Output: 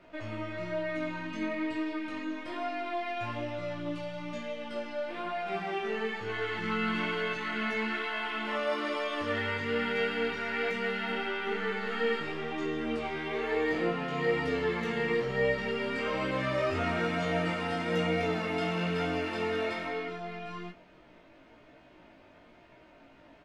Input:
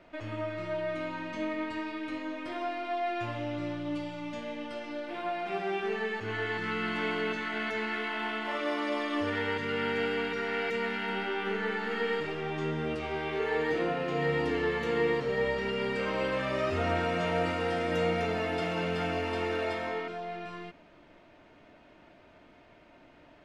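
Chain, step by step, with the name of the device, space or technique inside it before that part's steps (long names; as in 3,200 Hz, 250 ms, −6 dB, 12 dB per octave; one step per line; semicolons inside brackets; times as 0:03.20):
double-tracked vocal (double-tracking delay 22 ms −7 dB; chorus effect 1.1 Hz, delay 15.5 ms, depth 3 ms)
level +2.5 dB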